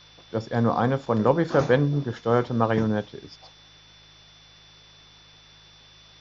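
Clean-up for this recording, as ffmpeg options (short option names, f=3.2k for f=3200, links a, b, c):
-af "bandreject=f=52.5:t=h:w=4,bandreject=f=105:t=h:w=4,bandreject=f=157.5:t=h:w=4,bandreject=f=3.5k:w=30,afwtdn=0.0032"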